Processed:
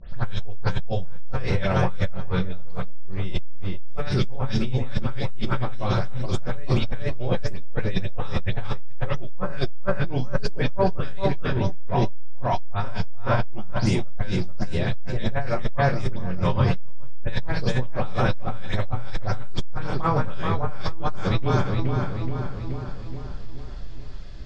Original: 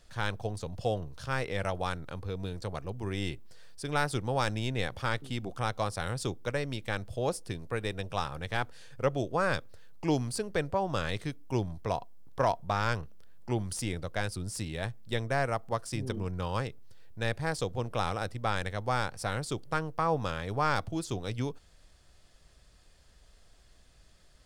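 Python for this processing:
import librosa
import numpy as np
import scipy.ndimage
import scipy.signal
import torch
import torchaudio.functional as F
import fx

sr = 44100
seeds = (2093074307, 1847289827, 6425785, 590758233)

y = fx.spec_delay(x, sr, highs='late', ms=145)
y = scipy.signal.sosfilt(scipy.signal.butter(4, 5700.0, 'lowpass', fs=sr, output='sos'), y)
y = fx.low_shelf(y, sr, hz=140.0, db=10.0)
y = fx.doubler(y, sr, ms=31.0, db=-12)
y = fx.echo_filtered(y, sr, ms=426, feedback_pct=57, hz=3400.0, wet_db=-5.5)
y = fx.over_compress(y, sr, threshold_db=-29.0, ratio=-1.0)
y = fx.room_shoebox(y, sr, seeds[0], volume_m3=410.0, walls='furnished', distance_m=1.1)
y = fx.transformer_sat(y, sr, knee_hz=55.0)
y = y * 10.0 ** (8.5 / 20.0)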